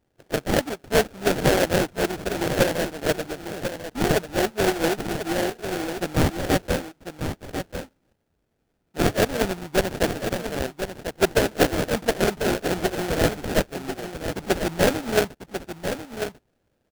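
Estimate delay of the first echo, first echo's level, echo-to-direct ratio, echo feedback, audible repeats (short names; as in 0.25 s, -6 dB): 1.044 s, -8.5 dB, -8.5 dB, no steady repeat, 1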